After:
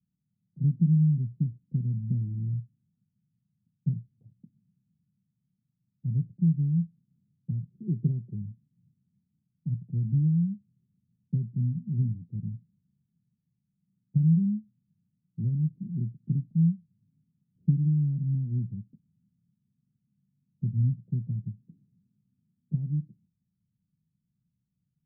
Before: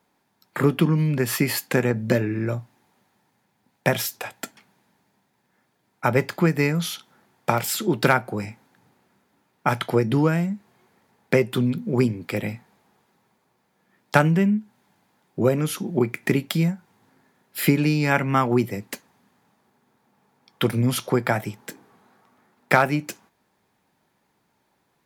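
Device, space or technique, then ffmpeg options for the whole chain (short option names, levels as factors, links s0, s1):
the neighbour's flat through the wall: -filter_complex "[0:a]lowpass=f=160:w=0.5412,lowpass=f=160:w=1.3066,equalizer=f=170:t=o:w=0.97:g=7,asplit=3[s0][s1][s2];[s0]afade=t=out:st=7.7:d=0.02[s3];[s1]equalizer=f=400:t=o:w=0.62:g=13,afade=t=in:st=7.7:d=0.02,afade=t=out:st=8.34:d=0.02[s4];[s2]afade=t=in:st=8.34:d=0.02[s5];[s3][s4][s5]amix=inputs=3:normalize=0,volume=0.631"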